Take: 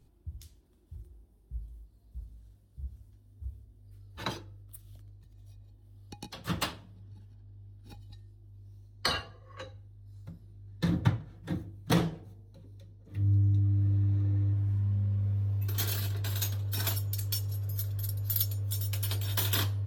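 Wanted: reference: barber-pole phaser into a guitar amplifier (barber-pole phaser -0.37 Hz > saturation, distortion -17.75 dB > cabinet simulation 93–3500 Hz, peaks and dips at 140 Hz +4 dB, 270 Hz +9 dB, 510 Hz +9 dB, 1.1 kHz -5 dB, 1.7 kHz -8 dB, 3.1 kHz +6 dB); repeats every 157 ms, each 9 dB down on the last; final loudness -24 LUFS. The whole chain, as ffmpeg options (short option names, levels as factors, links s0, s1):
-filter_complex "[0:a]aecho=1:1:157|314|471|628:0.355|0.124|0.0435|0.0152,asplit=2[s0][s1];[s1]afreqshift=-0.37[s2];[s0][s2]amix=inputs=2:normalize=1,asoftclip=threshold=0.0668,highpass=93,equalizer=f=140:t=q:w=4:g=4,equalizer=f=270:t=q:w=4:g=9,equalizer=f=510:t=q:w=4:g=9,equalizer=f=1100:t=q:w=4:g=-5,equalizer=f=1700:t=q:w=4:g=-8,equalizer=f=3100:t=q:w=4:g=6,lowpass=f=3500:w=0.5412,lowpass=f=3500:w=1.3066,volume=4.73"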